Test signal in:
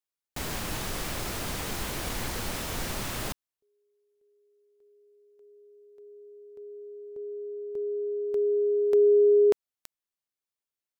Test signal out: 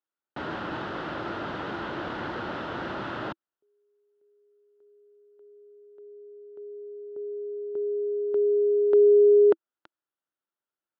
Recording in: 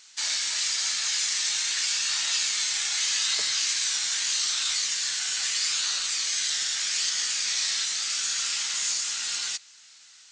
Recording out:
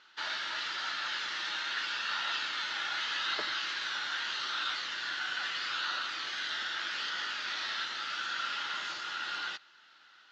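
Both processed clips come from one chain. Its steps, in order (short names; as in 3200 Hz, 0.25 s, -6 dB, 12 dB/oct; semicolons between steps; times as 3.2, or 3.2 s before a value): speaker cabinet 130–3200 Hz, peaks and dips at 330 Hz +8 dB, 590 Hz +4 dB, 890 Hz +4 dB, 1400 Hz +9 dB, 2300 Hz -9 dB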